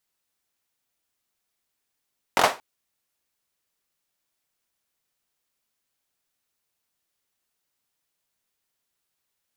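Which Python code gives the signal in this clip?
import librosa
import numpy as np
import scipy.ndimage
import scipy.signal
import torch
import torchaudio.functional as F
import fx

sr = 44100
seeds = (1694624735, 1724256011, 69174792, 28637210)

y = fx.drum_clap(sr, seeds[0], length_s=0.23, bursts=4, spacing_ms=22, hz=790.0, decay_s=0.26)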